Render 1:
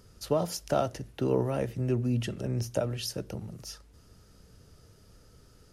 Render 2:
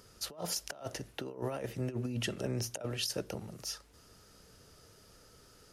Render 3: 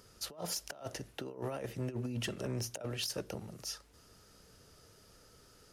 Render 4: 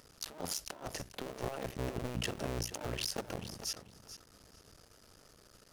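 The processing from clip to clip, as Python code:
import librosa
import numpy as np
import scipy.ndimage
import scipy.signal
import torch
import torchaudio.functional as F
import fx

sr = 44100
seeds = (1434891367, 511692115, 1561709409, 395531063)

y1 = fx.low_shelf(x, sr, hz=260.0, db=-12.0)
y1 = fx.over_compress(y1, sr, threshold_db=-36.0, ratio=-0.5)
y2 = np.clip(10.0 ** (29.0 / 20.0) * y1, -1.0, 1.0) / 10.0 ** (29.0 / 20.0)
y2 = y2 * librosa.db_to_amplitude(-1.5)
y3 = fx.cycle_switch(y2, sr, every=2, mode='muted')
y3 = fx.echo_feedback(y3, sr, ms=437, feedback_pct=16, wet_db=-12.5)
y3 = y3 * librosa.db_to_amplitude(3.0)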